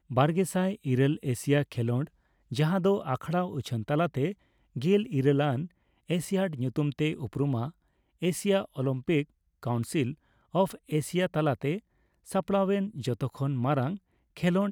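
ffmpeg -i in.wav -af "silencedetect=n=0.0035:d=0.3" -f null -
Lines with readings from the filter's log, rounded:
silence_start: 2.08
silence_end: 2.51 | silence_duration: 0.43
silence_start: 4.34
silence_end: 4.76 | silence_duration: 0.42
silence_start: 5.67
silence_end: 6.09 | silence_duration: 0.41
silence_start: 7.71
silence_end: 8.22 | silence_duration: 0.51
silence_start: 9.24
silence_end: 9.63 | silence_duration: 0.38
silence_start: 10.14
silence_end: 10.54 | silence_duration: 0.39
silence_start: 11.80
silence_end: 12.26 | silence_duration: 0.47
silence_start: 13.98
silence_end: 14.37 | silence_duration: 0.39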